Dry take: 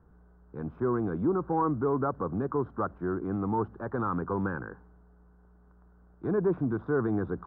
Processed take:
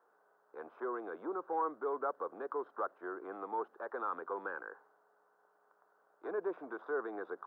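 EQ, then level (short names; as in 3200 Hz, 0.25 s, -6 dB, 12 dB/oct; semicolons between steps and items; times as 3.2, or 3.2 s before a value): HPF 490 Hz 24 dB/oct; dynamic EQ 980 Hz, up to -6 dB, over -44 dBFS, Q 0.74; 0.0 dB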